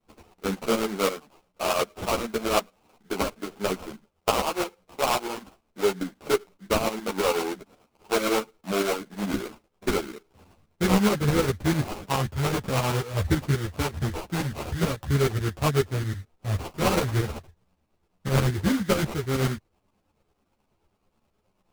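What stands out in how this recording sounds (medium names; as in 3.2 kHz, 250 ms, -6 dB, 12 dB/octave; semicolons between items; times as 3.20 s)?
aliases and images of a low sample rate 1.8 kHz, jitter 20%; tremolo saw up 9.3 Hz, depth 70%; a shimmering, thickened sound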